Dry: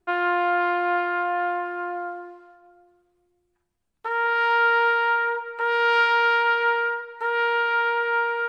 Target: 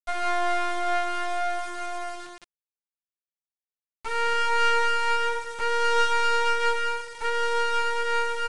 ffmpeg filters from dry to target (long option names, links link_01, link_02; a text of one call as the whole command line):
ffmpeg -i in.wav -af "aeval=exprs='max(val(0),0)':channel_layout=same,acrusher=bits=6:mix=0:aa=0.000001,aresample=22050,aresample=44100,volume=2.5dB" out.wav